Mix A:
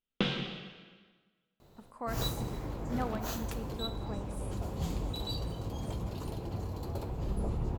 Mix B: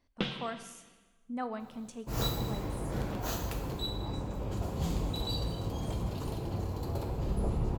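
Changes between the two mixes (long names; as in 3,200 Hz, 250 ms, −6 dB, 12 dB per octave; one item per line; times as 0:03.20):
speech: entry −1.60 s
first sound: send −10.0 dB
second sound: send +8.5 dB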